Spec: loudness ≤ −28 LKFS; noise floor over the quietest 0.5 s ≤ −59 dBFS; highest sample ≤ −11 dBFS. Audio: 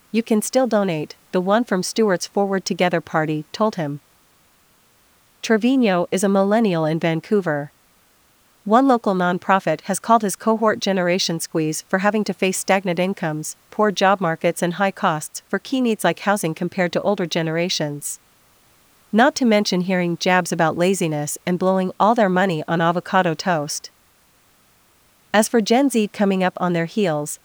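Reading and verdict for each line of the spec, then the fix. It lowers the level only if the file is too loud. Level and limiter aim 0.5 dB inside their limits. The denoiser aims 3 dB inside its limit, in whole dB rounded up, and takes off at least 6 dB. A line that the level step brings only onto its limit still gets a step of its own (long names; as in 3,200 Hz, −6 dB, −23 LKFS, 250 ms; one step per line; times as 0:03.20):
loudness −19.5 LKFS: out of spec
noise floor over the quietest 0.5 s −57 dBFS: out of spec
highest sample −2.0 dBFS: out of spec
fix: level −9 dB
brickwall limiter −11.5 dBFS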